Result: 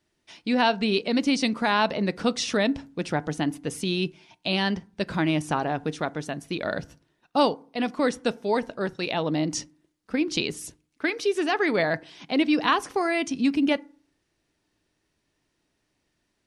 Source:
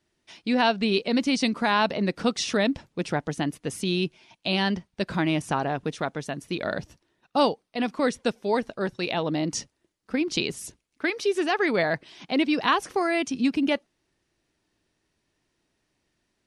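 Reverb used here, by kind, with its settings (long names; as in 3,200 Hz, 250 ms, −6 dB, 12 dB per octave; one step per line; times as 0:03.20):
feedback delay network reverb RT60 0.44 s, low-frequency decay 1.3×, high-frequency decay 0.45×, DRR 17.5 dB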